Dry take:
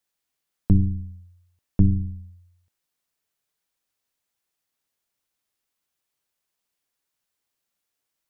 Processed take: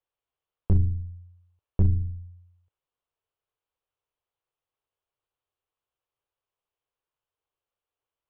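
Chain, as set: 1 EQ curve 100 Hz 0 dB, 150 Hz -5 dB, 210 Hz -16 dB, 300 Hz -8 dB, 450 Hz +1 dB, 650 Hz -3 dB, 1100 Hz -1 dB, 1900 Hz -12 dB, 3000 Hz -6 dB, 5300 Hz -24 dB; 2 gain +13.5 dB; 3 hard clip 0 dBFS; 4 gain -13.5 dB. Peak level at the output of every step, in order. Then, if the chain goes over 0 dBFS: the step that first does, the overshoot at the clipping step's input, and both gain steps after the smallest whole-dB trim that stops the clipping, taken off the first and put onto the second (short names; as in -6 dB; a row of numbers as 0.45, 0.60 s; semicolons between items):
-8.5, +5.0, 0.0, -13.5 dBFS; step 2, 5.0 dB; step 2 +8.5 dB, step 4 -8.5 dB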